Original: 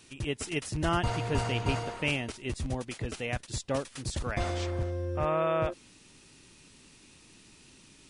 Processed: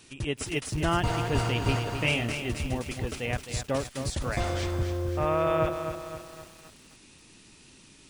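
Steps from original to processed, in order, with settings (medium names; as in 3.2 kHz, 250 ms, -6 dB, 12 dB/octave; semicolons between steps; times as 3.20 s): 1.97–2.44 s: doubling 26 ms -3.5 dB; bit-crushed delay 261 ms, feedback 55%, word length 8-bit, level -8 dB; trim +2 dB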